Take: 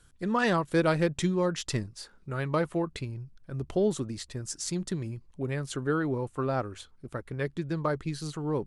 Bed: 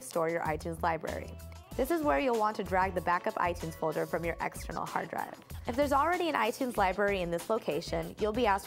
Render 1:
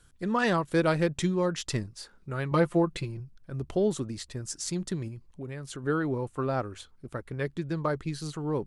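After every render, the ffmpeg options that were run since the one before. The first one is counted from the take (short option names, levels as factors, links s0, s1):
-filter_complex "[0:a]asettb=1/sr,asplit=3[s0][s1][s2];[s0]atrim=end=2.514[s3];[s1]atrim=start=2.51:end=3.2,asetpts=PTS-STARTPTS,afade=t=in:d=0.004:c=qsin,afade=t=out:st=0.686:d=0.004:c=qsin,aecho=1:1:5.8:0.88,atrim=end_sample=30429[s4];[s2]atrim=start=3.196[s5];[s3][s4]acrossfade=d=0.004:c1=hsin:c2=qsin[s6];[s6][s5]acrossfade=d=0.004:c1=qsin:c2=hsin,asettb=1/sr,asplit=3[s7][s8][s9];[s7]atrim=end=5.084[s10];[s8]atrim=start=5.08:end=5.84,asetpts=PTS-STARTPTS,afade=t=in:d=0.004:c=qsin,afade=t=out:st=0.756:d=0.004:c=qsin,acompressor=threshold=0.0112:ratio=2:attack=3.2:release=140:knee=1:detection=peak[s11];[s9]atrim=start=5.836[s12];[s10][s11]acrossfade=d=0.004:c1=hsin:c2=qsin[s13];[s13][s12]acrossfade=d=0.004:c1=qsin:c2=hsin"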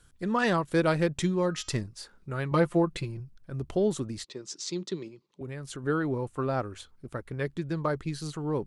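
-filter_complex "[0:a]asettb=1/sr,asplit=3[s0][s1][s2];[s0]atrim=end=1.364[s3];[s1]atrim=start=1.36:end=1.81,asetpts=PTS-STARTPTS,afade=t=in:d=0.004:c=qsin,afade=t=out:st=0.446:d=0.004:c=qsin,bandreject=f=315.9:t=h:w=4,bandreject=f=631.8:t=h:w=4,bandreject=f=947.7:t=h:w=4,bandreject=f=1263.6:t=h:w=4,bandreject=f=1579.5:t=h:w=4,bandreject=f=1895.4:t=h:w=4,bandreject=f=2211.3:t=h:w=4,bandreject=f=2527.2:t=h:w=4,bandreject=f=2843.1:t=h:w=4,bandreject=f=3159:t=h:w=4,bandreject=f=3474.9:t=h:w=4,bandreject=f=3790.8:t=h:w=4,bandreject=f=4106.7:t=h:w=4,bandreject=f=4422.6:t=h:w=4,bandreject=f=4738.5:t=h:w=4,bandreject=f=5054.4:t=h:w=4,bandreject=f=5370.3:t=h:w=4,bandreject=f=5686.2:t=h:w=4,bandreject=f=6002.1:t=h:w=4,bandreject=f=6318:t=h:w=4,bandreject=f=6633.9:t=h:w=4,bandreject=f=6949.8:t=h:w=4,bandreject=f=7265.7:t=h:w=4[s4];[s2]atrim=start=1.806[s5];[s3][s4]acrossfade=d=0.004:c1=hsin:c2=qsin[s6];[s6][s5]acrossfade=d=0.004:c1=qsin:c2=hsin,asettb=1/sr,asplit=3[s7][s8][s9];[s7]atrim=end=4.244[s10];[s8]atrim=start=4.24:end=5.41,asetpts=PTS-STARTPTS,afade=t=in:d=0.004:c=qsin,afade=t=out:st=1.166:d=0.004:c=qsin,highpass=f=190:w=0.5412,highpass=f=190:w=1.3066,equalizer=f=230:t=q:w=4:g=-7,equalizer=f=390:t=q:w=4:g=5,equalizer=f=700:t=q:w=4:g=-8,equalizer=f=1600:t=q:w=4:g=-8,equalizer=f=3800:t=q:w=4:g=6,lowpass=f=6600:w=0.5412,lowpass=f=6600:w=1.3066[s11];[s9]atrim=start=5.406[s12];[s10][s11]acrossfade=d=0.004:c1=hsin:c2=qsin[s13];[s13][s12]acrossfade=d=0.004:c1=qsin:c2=hsin"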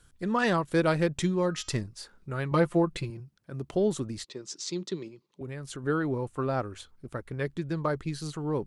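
-filter_complex "[0:a]asettb=1/sr,asplit=3[s0][s1][s2];[s0]atrim=end=3.104[s3];[s1]atrim=start=3.1:end=3.74,asetpts=PTS-STARTPTS,afade=t=in:d=0.004:c=qsin,afade=t=out:st=0.636:d=0.004:c=qsin,highpass=130[s4];[s2]atrim=start=3.736[s5];[s3][s4]acrossfade=d=0.004:c1=hsin:c2=qsin[s6];[s6][s5]acrossfade=d=0.004:c1=qsin:c2=hsin"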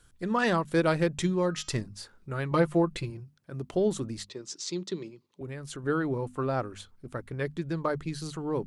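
-af "bandreject=f=50:t=h:w=6,bandreject=f=100:t=h:w=6,bandreject=f=150:t=h:w=6,bandreject=f=200:t=h:w=6,bandreject=f=250:t=h:w=6"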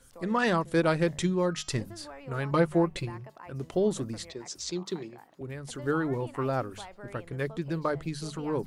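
-filter_complex "[1:a]volume=0.133[s0];[0:a][s0]amix=inputs=2:normalize=0"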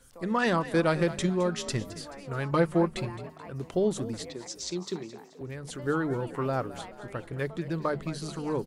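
-filter_complex "[0:a]asplit=5[s0][s1][s2][s3][s4];[s1]adelay=215,afreqshift=40,volume=0.178[s5];[s2]adelay=430,afreqshift=80,volume=0.0832[s6];[s3]adelay=645,afreqshift=120,volume=0.0394[s7];[s4]adelay=860,afreqshift=160,volume=0.0184[s8];[s0][s5][s6][s7][s8]amix=inputs=5:normalize=0"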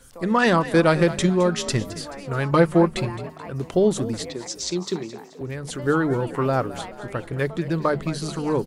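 -af "volume=2.37"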